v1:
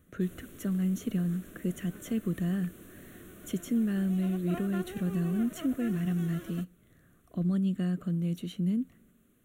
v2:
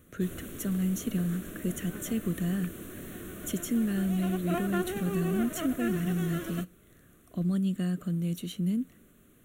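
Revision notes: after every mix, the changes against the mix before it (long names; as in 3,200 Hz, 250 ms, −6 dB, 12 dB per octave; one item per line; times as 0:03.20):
speech: add high-shelf EQ 4,100 Hz +10 dB
background +8.0 dB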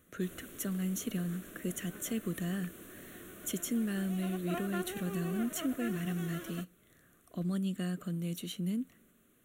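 background −5.0 dB
master: add low-shelf EQ 250 Hz −9 dB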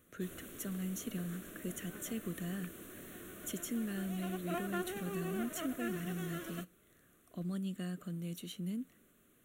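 speech −5.0 dB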